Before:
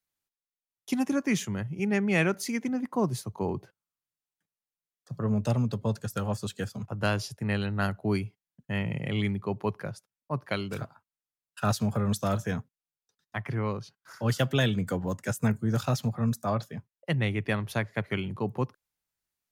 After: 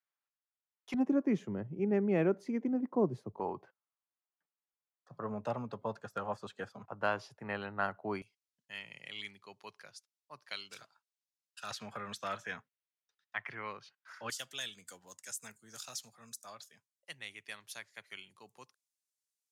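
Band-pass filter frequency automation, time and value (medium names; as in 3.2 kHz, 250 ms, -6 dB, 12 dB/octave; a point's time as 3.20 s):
band-pass filter, Q 1.1
1.3 kHz
from 0.94 s 390 Hz
from 3.40 s 970 Hz
from 8.22 s 5.2 kHz
from 11.71 s 2.1 kHz
from 14.30 s 7.4 kHz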